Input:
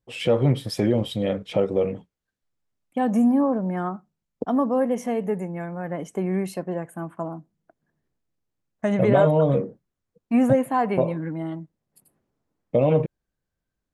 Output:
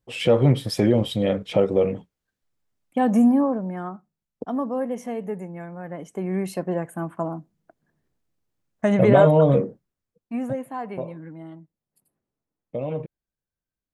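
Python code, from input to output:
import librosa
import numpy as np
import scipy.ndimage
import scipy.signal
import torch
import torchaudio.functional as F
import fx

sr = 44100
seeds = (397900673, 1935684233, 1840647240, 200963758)

y = fx.gain(x, sr, db=fx.line((3.25, 2.5), (3.76, -4.5), (6.07, -4.5), (6.66, 3.0), (9.63, 3.0), (10.41, -9.5)))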